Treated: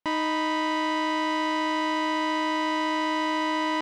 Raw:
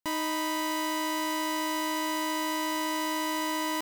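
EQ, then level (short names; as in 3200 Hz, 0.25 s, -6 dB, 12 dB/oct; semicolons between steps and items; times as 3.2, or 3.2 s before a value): LPF 3400 Hz 12 dB/oct; low shelf 100 Hz -7 dB; +5.0 dB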